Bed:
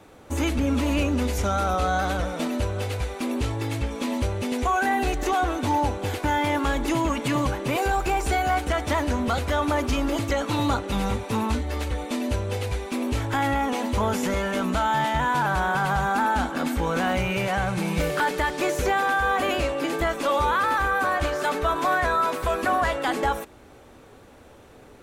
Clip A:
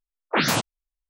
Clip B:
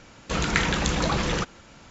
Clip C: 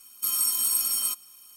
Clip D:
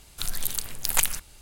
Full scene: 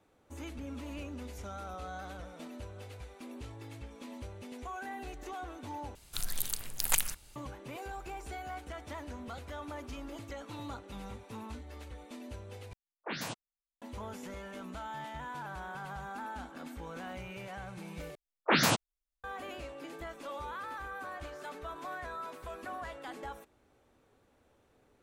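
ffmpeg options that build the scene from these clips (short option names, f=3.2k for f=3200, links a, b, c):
-filter_complex "[1:a]asplit=2[a][b];[0:a]volume=-19dB[c];[a]bandreject=f=1.3k:w=12[d];[c]asplit=4[e][f][g][h];[e]atrim=end=5.954[i];[4:a]atrim=end=1.41,asetpts=PTS-STARTPTS,volume=-6dB[j];[f]atrim=start=7.356:end=12.734[k];[d]atrim=end=1.09,asetpts=PTS-STARTPTS,volume=-17dB[l];[g]atrim=start=13.816:end=18.154[m];[b]atrim=end=1.09,asetpts=PTS-STARTPTS,volume=-4.5dB[n];[h]atrim=start=19.236[o];[i][j]acrossfade=d=0.004:c1=hsin:c2=hsin[p];[p][k]acrossfade=d=0.004:c1=hsin:c2=hsin[q];[q][l]acrossfade=d=0.004:c1=hsin:c2=hsin[r];[r][m]acrossfade=d=0.004:c1=hsin:c2=hsin[s];[s][n]acrossfade=d=0.004:c1=hsin:c2=hsin[t];[t][o]acrossfade=d=0.004:c1=hsin:c2=hsin"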